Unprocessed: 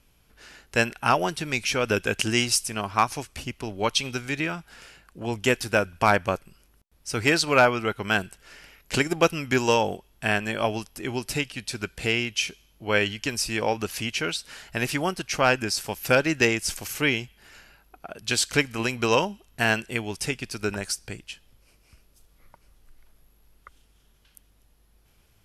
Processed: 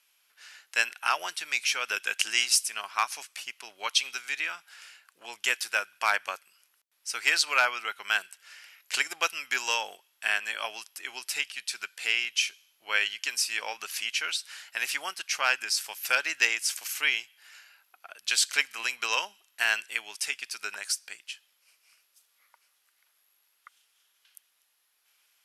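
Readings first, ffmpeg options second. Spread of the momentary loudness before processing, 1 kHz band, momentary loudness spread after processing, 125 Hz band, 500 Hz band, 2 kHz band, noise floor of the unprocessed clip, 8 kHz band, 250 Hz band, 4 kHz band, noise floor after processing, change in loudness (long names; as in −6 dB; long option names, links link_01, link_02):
11 LU, −6.5 dB, 14 LU, below −40 dB, −17.0 dB, −1.0 dB, −62 dBFS, 0.0 dB, −27.5 dB, 0.0 dB, −71 dBFS, −3.0 dB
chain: -af "highpass=1400"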